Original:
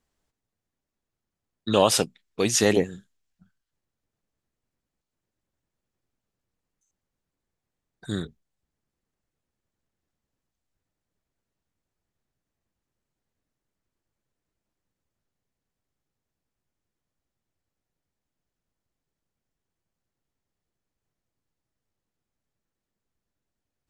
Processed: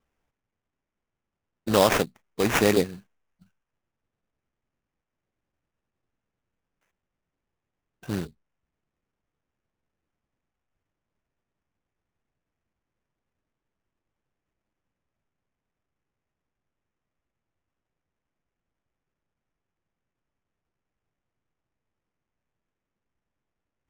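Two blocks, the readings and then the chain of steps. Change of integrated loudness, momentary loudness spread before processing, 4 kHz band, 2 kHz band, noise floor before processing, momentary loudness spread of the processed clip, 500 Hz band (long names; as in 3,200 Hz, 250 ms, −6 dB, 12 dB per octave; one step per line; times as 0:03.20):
−0.5 dB, 14 LU, −3.0 dB, +3.5 dB, below −85 dBFS, 13 LU, 0.0 dB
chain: sample-rate reduction 4,300 Hz, jitter 20%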